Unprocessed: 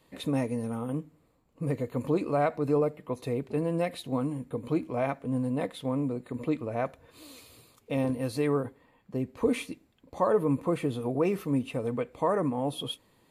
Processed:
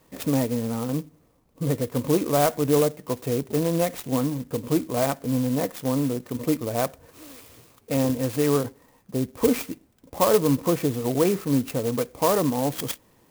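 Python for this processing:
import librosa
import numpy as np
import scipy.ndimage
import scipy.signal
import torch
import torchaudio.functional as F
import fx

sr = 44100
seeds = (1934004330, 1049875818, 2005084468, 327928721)

y = fx.clock_jitter(x, sr, seeds[0], jitter_ms=0.076)
y = y * librosa.db_to_amplitude(5.5)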